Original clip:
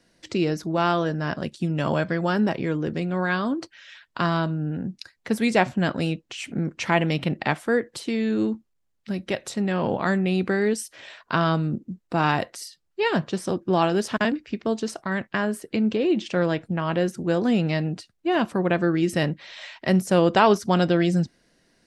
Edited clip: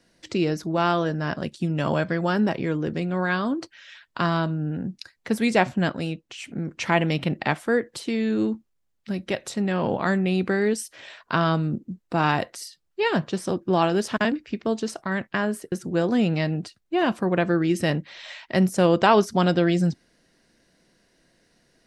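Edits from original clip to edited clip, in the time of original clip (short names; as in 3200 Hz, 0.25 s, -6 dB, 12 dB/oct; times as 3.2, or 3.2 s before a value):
5.89–6.69 gain -3.5 dB
15.72–17.05 cut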